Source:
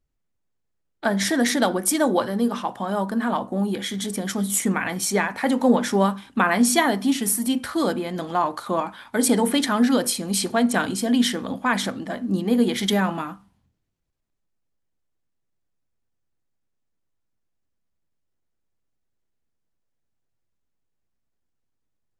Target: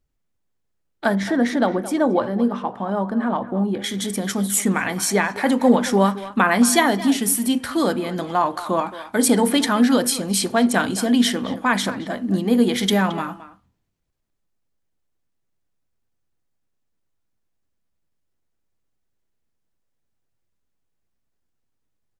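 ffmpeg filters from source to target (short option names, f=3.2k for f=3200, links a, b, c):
-filter_complex "[0:a]asettb=1/sr,asplit=3[a][b][c];[a]atrim=end=1.154[d];[b]atrim=start=1.15:end=3.84,asetpts=PTS-STARTPTS,afade=t=in:d=0.004:c=qsin,afade=t=out:st=2.686:d=0.004:c=qsin,lowpass=f=1.2k:p=1[e];[c]atrim=start=3.836[f];[d][e]acrossfade=d=0.004:c1=hsin:c2=qsin[g];[g][f]acrossfade=d=0.004:c1=qsin:c2=hsin,asplit=2[h][i];[i]adelay=220,highpass=300,lowpass=3.4k,asoftclip=type=hard:threshold=-13.5dB,volume=-14dB[j];[h][j]amix=inputs=2:normalize=0,volume=2.5dB"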